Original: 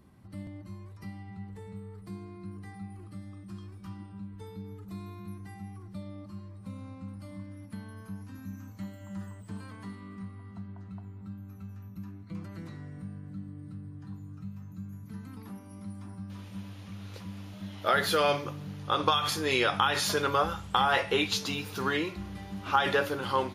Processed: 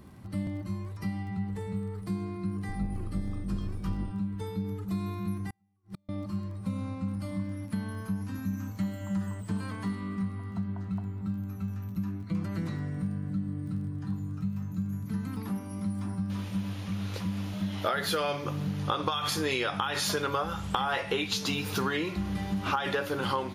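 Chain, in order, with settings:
0:02.68–0:04.11: sub-octave generator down 2 octaves, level +2 dB
dynamic equaliser 180 Hz, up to +4 dB, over −49 dBFS, Q 2.8
downward compressor 10 to 1, threshold −34 dBFS, peak gain reduction 15 dB
surface crackle 18 per second −54 dBFS
0:05.50–0:06.09: gate with flip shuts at −38 dBFS, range −39 dB
level +8 dB

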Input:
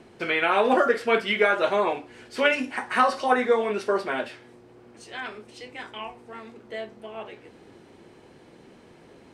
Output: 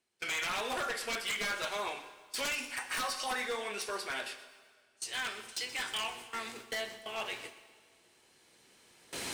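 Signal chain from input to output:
camcorder AGC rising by 5.6 dB per second
first-order pre-emphasis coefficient 0.97
noise gate with hold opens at −34 dBFS
low-shelf EQ 130 Hz +8.5 dB
in parallel at −1 dB: downward compressor, threshold −36 dBFS, peak gain reduction 7.5 dB
on the sum: wave folding −29 dBFS
dense smooth reverb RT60 1.9 s, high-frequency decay 0.95×, DRR 12 dB
feedback echo at a low word length 124 ms, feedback 35%, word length 10 bits, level −14.5 dB

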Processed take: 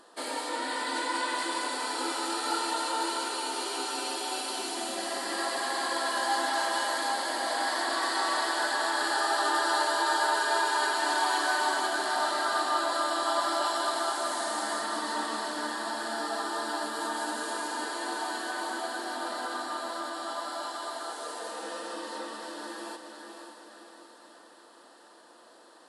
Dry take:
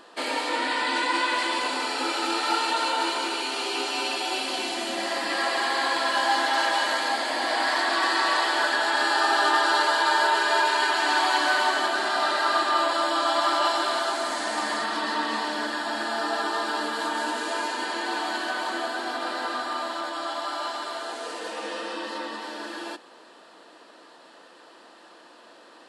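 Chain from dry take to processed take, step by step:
graphic EQ with 15 bands 160 Hz −3 dB, 2,500 Hz −8 dB, 10,000 Hz +10 dB
feedback delay with all-pass diffusion 540 ms, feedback 52%, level −6.5 dB
level −5.5 dB

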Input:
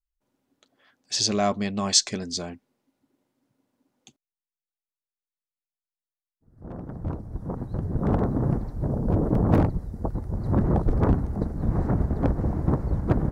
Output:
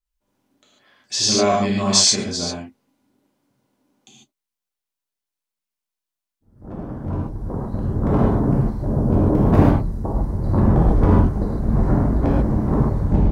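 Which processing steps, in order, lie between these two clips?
turntable brake at the end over 0.31 s
reverb whose tail is shaped and stops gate 170 ms flat, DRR −5.5 dB

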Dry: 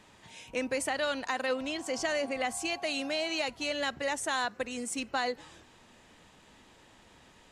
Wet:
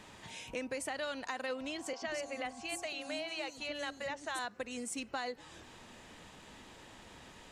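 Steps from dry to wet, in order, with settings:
downward compressor 2 to 1, threshold −49 dBFS, peak gain reduction 12 dB
0:01.93–0:04.39: three-band delay without the direct sound mids, lows, highs 90/180 ms, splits 350/5,500 Hz
level +4 dB

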